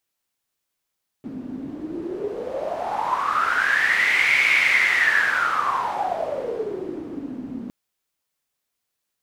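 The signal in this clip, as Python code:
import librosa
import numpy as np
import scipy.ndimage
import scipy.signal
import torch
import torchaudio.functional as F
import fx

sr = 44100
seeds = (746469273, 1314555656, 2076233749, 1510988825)

y = fx.wind(sr, seeds[0], length_s=6.46, low_hz=250.0, high_hz=2200.0, q=11.0, gusts=1, swing_db=14.0)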